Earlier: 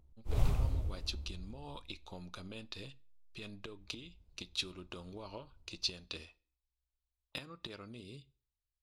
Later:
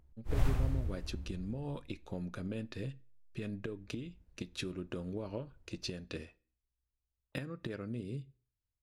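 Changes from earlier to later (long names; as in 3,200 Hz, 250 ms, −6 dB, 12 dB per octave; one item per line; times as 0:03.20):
speech: add octave-band graphic EQ 125/250/500/1,000/4,000 Hz +11/+7/+7/−5/−9 dB
master: add parametric band 1,700 Hz +10 dB 0.55 octaves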